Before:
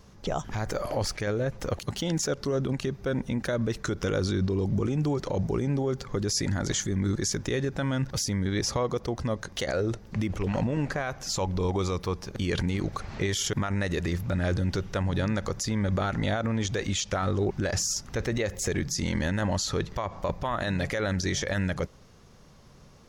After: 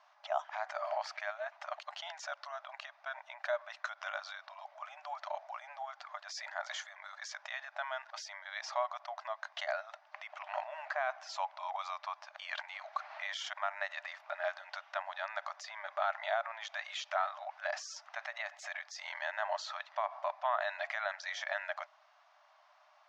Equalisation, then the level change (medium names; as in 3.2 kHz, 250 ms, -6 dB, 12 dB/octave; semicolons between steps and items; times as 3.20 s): brick-wall FIR high-pass 590 Hz; distance through air 180 m; treble shelf 3.5 kHz -8.5 dB; 0.0 dB